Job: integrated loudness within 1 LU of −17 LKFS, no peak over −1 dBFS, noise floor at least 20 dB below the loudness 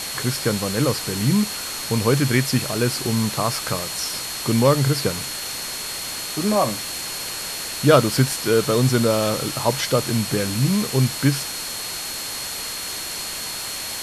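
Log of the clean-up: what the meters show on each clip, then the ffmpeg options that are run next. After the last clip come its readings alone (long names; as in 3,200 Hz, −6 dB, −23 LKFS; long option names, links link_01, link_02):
interfering tone 4,300 Hz; level of the tone −33 dBFS; background noise floor −30 dBFS; target noise floor −42 dBFS; integrated loudness −21.5 LKFS; sample peak −2.0 dBFS; target loudness −17.0 LKFS
→ -af "bandreject=frequency=4300:width=30"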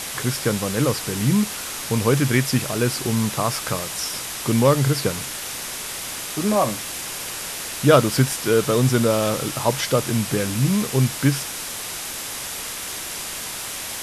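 interfering tone none found; background noise floor −31 dBFS; target noise floor −42 dBFS
→ -af "afftdn=noise_reduction=11:noise_floor=-31"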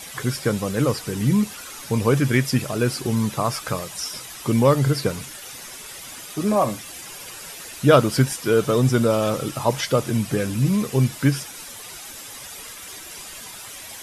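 background noise floor −38 dBFS; target noise floor −42 dBFS
→ -af "afftdn=noise_reduction=6:noise_floor=-38"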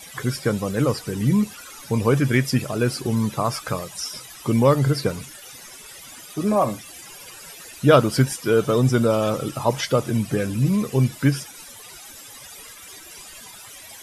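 background noise floor −42 dBFS; integrated loudness −21.5 LKFS; sample peak −2.5 dBFS; target loudness −17.0 LKFS
→ -af "volume=4.5dB,alimiter=limit=-1dB:level=0:latency=1"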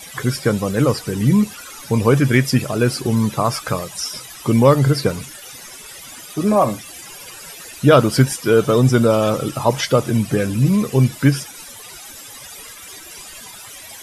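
integrated loudness −17.5 LKFS; sample peak −1.0 dBFS; background noise floor −38 dBFS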